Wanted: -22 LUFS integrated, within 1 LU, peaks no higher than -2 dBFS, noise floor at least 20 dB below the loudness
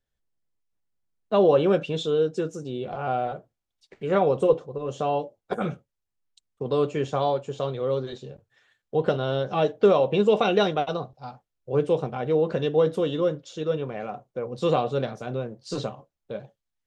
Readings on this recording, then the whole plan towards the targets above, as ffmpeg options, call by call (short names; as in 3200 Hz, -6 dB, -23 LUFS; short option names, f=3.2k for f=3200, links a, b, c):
loudness -25.5 LUFS; peak -8.0 dBFS; loudness target -22.0 LUFS
-> -af "volume=3.5dB"